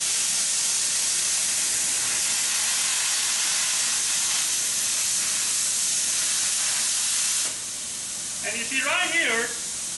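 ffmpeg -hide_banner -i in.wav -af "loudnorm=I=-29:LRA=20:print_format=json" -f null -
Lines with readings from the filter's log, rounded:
"input_i" : "-22.0",
"input_tp" : "-11.1",
"input_lra" : "2.7",
"input_thresh" : "-32.0",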